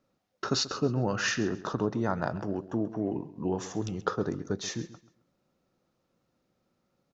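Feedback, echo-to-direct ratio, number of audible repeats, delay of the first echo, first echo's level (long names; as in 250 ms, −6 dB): 27%, −15.5 dB, 2, 134 ms, −16.0 dB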